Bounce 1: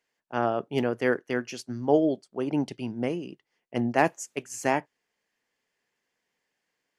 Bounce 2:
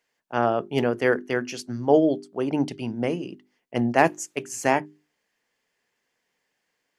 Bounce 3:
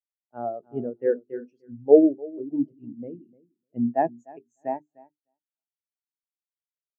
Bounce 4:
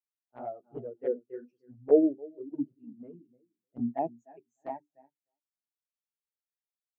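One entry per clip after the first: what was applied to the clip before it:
hum notches 50/100/150/200/250/300/350/400 Hz; trim +4 dB
bass shelf 100 Hz +6 dB; feedback delay 301 ms, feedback 27%, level -9 dB; spectral contrast expander 2.5:1
touch-sensitive flanger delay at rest 10.4 ms, full sweep at -19.5 dBFS; trim -6 dB

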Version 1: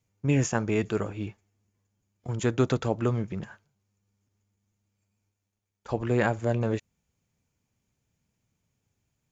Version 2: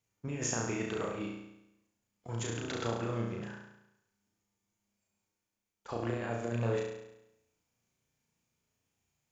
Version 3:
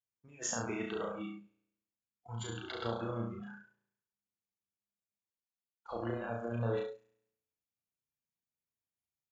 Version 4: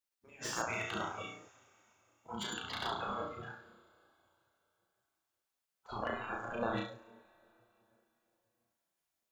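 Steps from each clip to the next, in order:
bass shelf 250 Hz -9.5 dB; compressor with a negative ratio -30 dBFS, ratio -0.5; on a send: flutter echo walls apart 5.9 m, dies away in 0.86 s; on the sum: trim -6 dB
spectral noise reduction 19 dB; trim -1.5 dB
two-slope reverb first 0.23 s, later 3.5 s, from -22 dB, DRR 10 dB; spectral gate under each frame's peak -10 dB weak; slew-rate limiter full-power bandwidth 27 Hz; trim +7 dB

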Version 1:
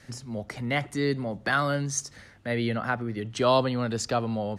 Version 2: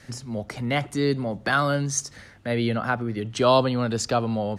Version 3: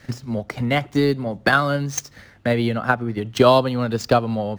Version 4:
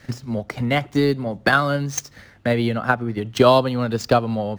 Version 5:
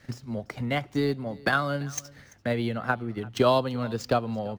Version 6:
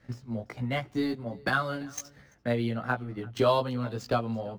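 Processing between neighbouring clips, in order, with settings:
dynamic bell 1.9 kHz, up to -6 dB, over -49 dBFS, Q 5.5; trim +3.5 dB
median filter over 5 samples; transient shaper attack +8 dB, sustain -3 dB; trim +2 dB
no audible change
delay 339 ms -22.5 dB; trim -7.5 dB
chorus 1.3 Hz, delay 15.5 ms, depth 2.2 ms; tape noise reduction on one side only decoder only

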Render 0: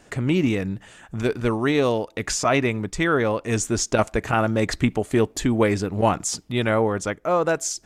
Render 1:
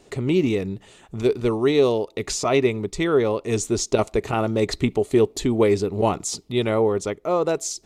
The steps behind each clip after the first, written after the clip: graphic EQ with 31 bands 400 Hz +10 dB, 1.6 kHz -11 dB, 4 kHz +6 dB; trim -2 dB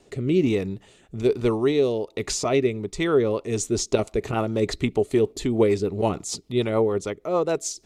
rotary cabinet horn 1.2 Hz, later 6.7 Hz, at 2.90 s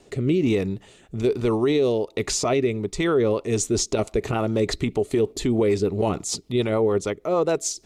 peak limiter -16 dBFS, peak gain reduction 8 dB; trim +3 dB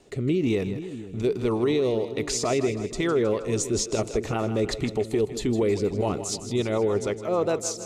two-band feedback delay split 370 Hz, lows 487 ms, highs 158 ms, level -11.5 dB; trim -3 dB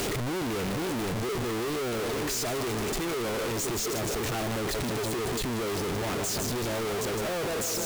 one-bit comparator; trim -4.5 dB

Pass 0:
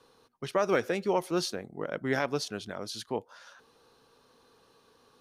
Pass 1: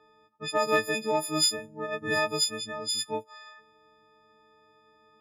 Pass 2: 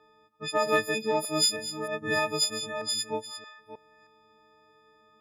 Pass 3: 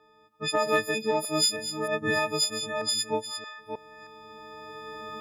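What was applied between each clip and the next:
partials quantised in pitch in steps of 6 st; level-controlled noise filter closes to 1.9 kHz, open at -25 dBFS; Chebyshev shaper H 3 -23 dB, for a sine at -10.5 dBFS
chunks repeated in reverse 313 ms, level -12.5 dB
recorder AGC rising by 9.9 dB/s

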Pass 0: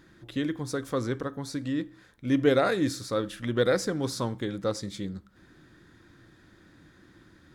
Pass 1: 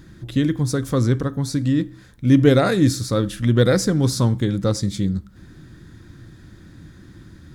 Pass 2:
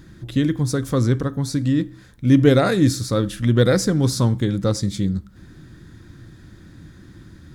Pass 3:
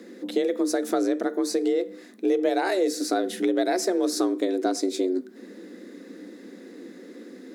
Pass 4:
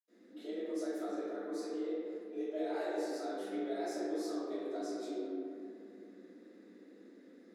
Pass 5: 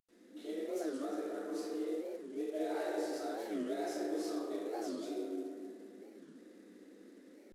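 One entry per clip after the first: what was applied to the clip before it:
tone controls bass +13 dB, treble +6 dB; trim +4.5 dB
no audible change
compression 6:1, threshold -20 dBFS, peak gain reduction 12 dB; frequency shift +180 Hz
reverberation RT60 2.6 s, pre-delay 77 ms; trim -3 dB
CVSD coder 64 kbps; warped record 45 rpm, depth 250 cents

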